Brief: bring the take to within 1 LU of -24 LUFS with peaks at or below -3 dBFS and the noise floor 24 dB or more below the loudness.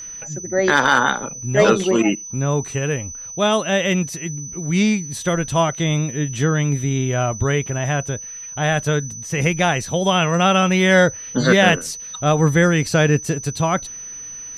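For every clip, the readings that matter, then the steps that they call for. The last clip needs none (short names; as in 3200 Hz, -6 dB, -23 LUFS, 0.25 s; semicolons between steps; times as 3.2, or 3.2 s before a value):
ticks 35/s; steady tone 6000 Hz; tone level -31 dBFS; loudness -18.5 LUFS; peak -3.0 dBFS; loudness target -24.0 LUFS
-> de-click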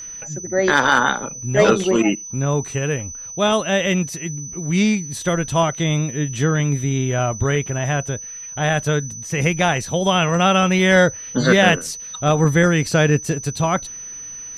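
ticks 0/s; steady tone 6000 Hz; tone level -31 dBFS
-> notch 6000 Hz, Q 30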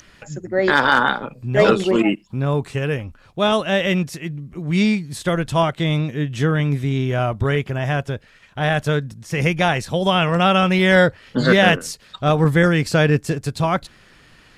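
steady tone none; loudness -19.0 LUFS; peak -1.5 dBFS; loudness target -24.0 LUFS
-> gain -5 dB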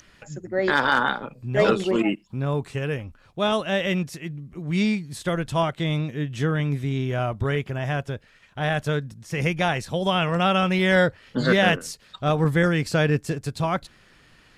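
loudness -24.0 LUFS; peak -6.5 dBFS; noise floor -56 dBFS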